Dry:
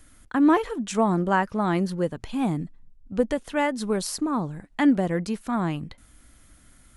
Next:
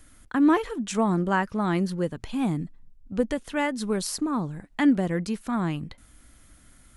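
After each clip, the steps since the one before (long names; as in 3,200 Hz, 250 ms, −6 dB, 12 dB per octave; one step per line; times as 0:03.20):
dynamic equaliser 690 Hz, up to −4 dB, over −37 dBFS, Q 1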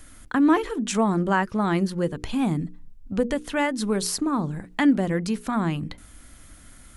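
mains-hum notches 60/120/180/240/300/360/420/480 Hz
in parallel at +1 dB: downward compressor, threshold −33 dBFS, peak gain reduction 16.5 dB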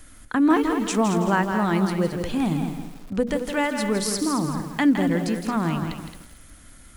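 on a send: feedback echo with a high-pass in the loop 220 ms, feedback 16%, high-pass 150 Hz, level −9 dB
on the sum: feedback echo at a low word length 163 ms, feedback 35%, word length 7 bits, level −7 dB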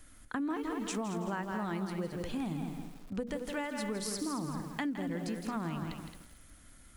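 downward compressor, threshold −23 dBFS, peak gain reduction 9.5 dB
level −9 dB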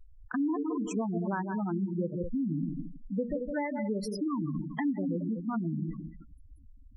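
one scale factor per block 7 bits
gate on every frequency bin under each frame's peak −10 dB strong
level +5.5 dB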